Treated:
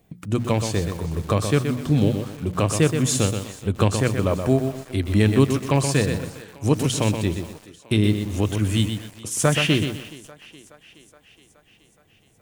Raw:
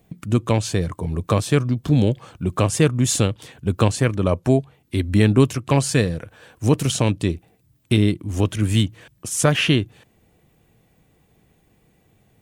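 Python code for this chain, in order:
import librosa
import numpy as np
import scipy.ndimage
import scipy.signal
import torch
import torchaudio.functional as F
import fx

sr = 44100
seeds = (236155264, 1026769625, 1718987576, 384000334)

y = fx.hum_notches(x, sr, base_hz=60, count=4)
y = fx.echo_thinned(y, sr, ms=421, feedback_pct=66, hz=210.0, wet_db=-20.0)
y = fx.echo_crushed(y, sr, ms=125, feedback_pct=35, bits=6, wet_db=-6.5)
y = F.gain(torch.from_numpy(y), -2.0).numpy()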